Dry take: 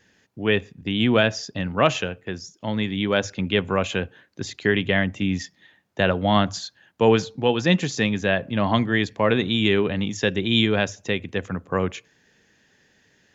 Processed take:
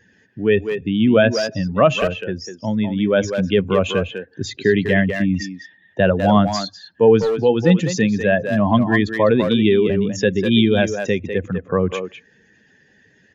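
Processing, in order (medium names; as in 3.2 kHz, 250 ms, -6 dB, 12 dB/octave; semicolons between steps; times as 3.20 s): spectral contrast enhancement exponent 1.7; speakerphone echo 200 ms, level -6 dB; trim +5 dB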